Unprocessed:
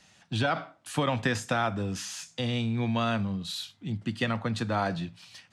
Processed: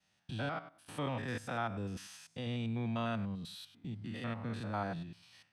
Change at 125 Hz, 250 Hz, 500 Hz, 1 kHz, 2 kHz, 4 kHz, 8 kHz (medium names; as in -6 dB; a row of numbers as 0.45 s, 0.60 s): -8.0 dB, -8.5 dB, -9.5 dB, -9.5 dB, -11.0 dB, -12.5 dB, -15.0 dB